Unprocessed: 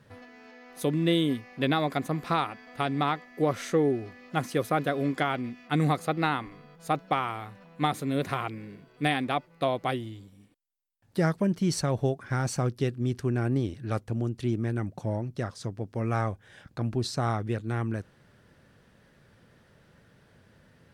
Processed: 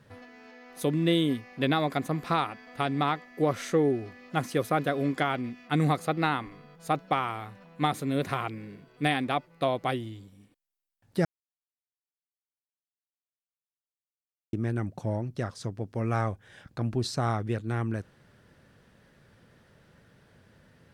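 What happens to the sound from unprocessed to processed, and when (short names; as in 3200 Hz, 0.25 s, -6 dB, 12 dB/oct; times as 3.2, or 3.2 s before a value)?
11.25–14.53 mute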